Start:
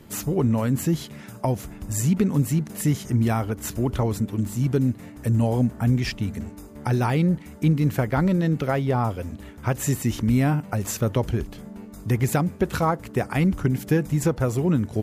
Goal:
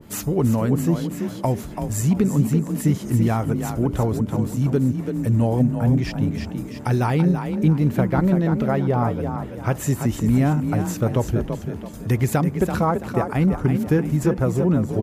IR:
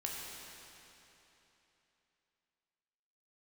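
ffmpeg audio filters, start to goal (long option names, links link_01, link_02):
-filter_complex "[0:a]asplit=5[link_01][link_02][link_03][link_04][link_05];[link_02]adelay=334,afreqshift=31,volume=-7dB[link_06];[link_03]adelay=668,afreqshift=62,volume=-16.6dB[link_07];[link_04]adelay=1002,afreqshift=93,volume=-26.3dB[link_08];[link_05]adelay=1336,afreqshift=124,volume=-35.9dB[link_09];[link_01][link_06][link_07][link_08][link_09]amix=inputs=5:normalize=0,adynamicequalizer=threshold=0.00794:dfrequency=1600:dqfactor=0.7:tfrequency=1600:tqfactor=0.7:attack=5:release=100:ratio=0.375:range=4:mode=cutabove:tftype=highshelf,volume=2dB"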